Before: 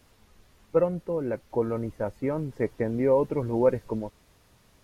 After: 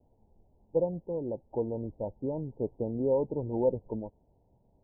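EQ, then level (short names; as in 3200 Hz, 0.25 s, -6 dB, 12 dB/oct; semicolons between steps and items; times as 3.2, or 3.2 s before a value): steep low-pass 920 Hz 96 dB/oct; -5.0 dB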